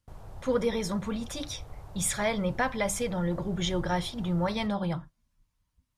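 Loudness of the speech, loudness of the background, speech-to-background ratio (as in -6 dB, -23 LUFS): -30.5 LUFS, -47.5 LUFS, 17.0 dB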